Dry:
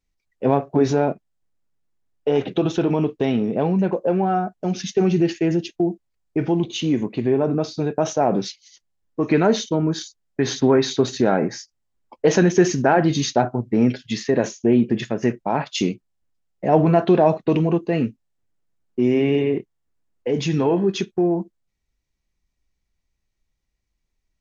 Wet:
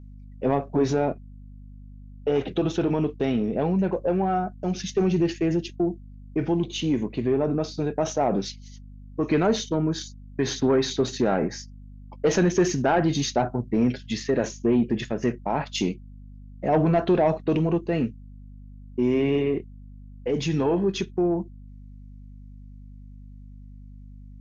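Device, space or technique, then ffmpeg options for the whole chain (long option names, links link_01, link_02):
valve amplifier with mains hum: -af "aeval=exprs='(tanh(2.82*val(0)+0.05)-tanh(0.05))/2.82':channel_layout=same,aeval=exprs='val(0)+0.0112*(sin(2*PI*50*n/s)+sin(2*PI*2*50*n/s)/2+sin(2*PI*3*50*n/s)/3+sin(2*PI*4*50*n/s)/4+sin(2*PI*5*50*n/s)/5)':channel_layout=same,volume=-3dB"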